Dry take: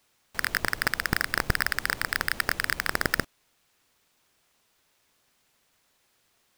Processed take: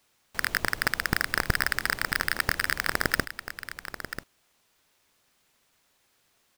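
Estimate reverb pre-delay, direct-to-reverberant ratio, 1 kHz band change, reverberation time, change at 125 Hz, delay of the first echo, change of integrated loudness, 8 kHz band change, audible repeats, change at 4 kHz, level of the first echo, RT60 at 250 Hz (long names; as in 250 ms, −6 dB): no reverb audible, no reverb audible, +0.5 dB, no reverb audible, +0.5 dB, 989 ms, −0.5 dB, +0.5 dB, 1, +0.5 dB, −11.0 dB, no reverb audible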